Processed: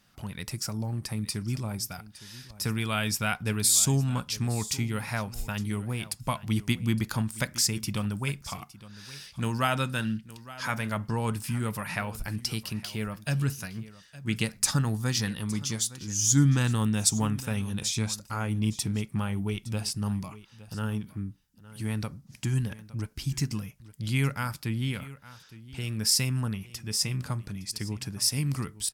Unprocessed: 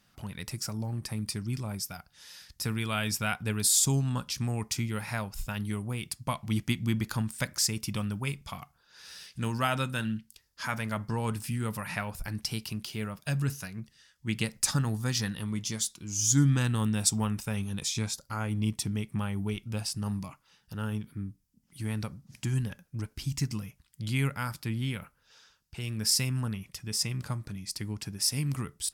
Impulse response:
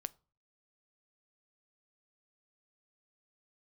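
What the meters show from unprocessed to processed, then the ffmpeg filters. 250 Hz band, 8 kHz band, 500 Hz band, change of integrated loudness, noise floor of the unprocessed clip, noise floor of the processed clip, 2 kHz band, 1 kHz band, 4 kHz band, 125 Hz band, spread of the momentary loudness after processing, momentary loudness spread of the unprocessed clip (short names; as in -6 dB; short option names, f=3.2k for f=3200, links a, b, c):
+2.0 dB, +2.0 dB, +2.0 dB, +2.0 dB, -69 dBFS, -55 dBFS, +2.0 dB, +2.0 dB, +2.0 dB, +2.0 dB, 14 LU, 13 LU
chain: -af "aecho=1:1:863:0.133,volume=2dB"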